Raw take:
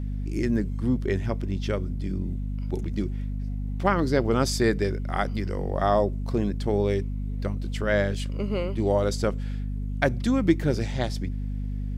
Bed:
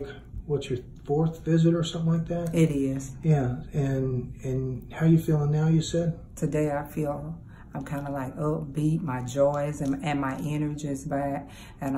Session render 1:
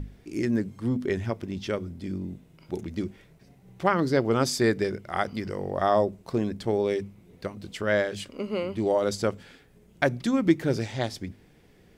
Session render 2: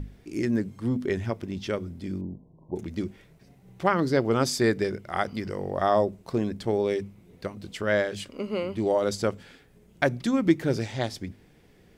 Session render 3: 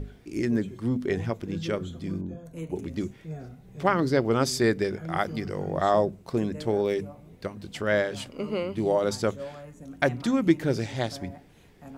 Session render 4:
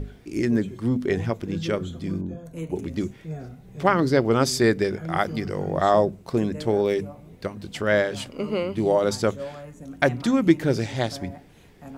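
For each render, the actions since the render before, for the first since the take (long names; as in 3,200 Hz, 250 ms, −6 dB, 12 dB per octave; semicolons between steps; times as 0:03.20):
mains-hum notches 50/100/150/200/250 Hz
0:02.21–0:02.76: linear-phase brick-wall low-pass 1,100 Hz
mix in bed −15.5 dB
level +3.5 dB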